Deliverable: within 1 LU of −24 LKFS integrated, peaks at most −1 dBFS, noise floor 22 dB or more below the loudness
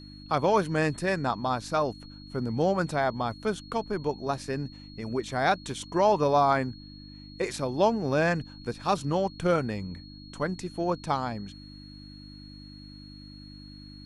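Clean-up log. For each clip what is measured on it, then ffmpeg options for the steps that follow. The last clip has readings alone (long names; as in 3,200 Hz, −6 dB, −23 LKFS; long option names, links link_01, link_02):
mains hum 50 Hz; hum harmonics up to 300 Hz; level of the hum −46 dBFS; interfering tone 4,300 Hz; level of the tone −50 dBFS; integrated loudness −28.0 LKFS; sample peak −11.5 dBFS; target loudness −24.0 LKFS
→ -af "bandreject=frequency=50:width_type=h:width=4,bandreject=frequency=100:width_type=h:width=4,bandreject=frequency=150:width_type=h:width=4,bandreject=frequency=200:width_type=h:width=4,bandreject=frequency=250:width_type=h:width=4,bandreject=frequency=300:width_type=h:width=4"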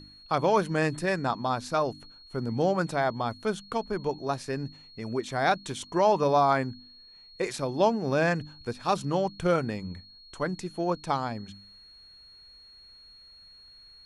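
mains hum none found; interfering tone 4,300 Hz; level of the tone −50 dBFS
→ -af "bandreject=frequency=4300:width=30"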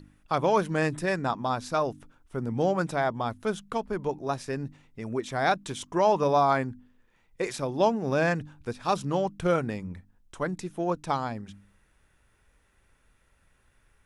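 interfering tone none found; integrated loudness −28.5 LKFS; sample peak −11.5 dBFS; target loudness −24.0 LKFS
→ -af "volume=4.5dB"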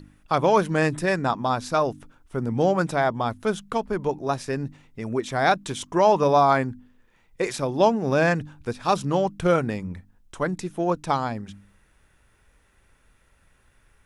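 integrated loudness −24.0 LKFS; sample peak −7.0 dBFS; background noise floor −62 dBFS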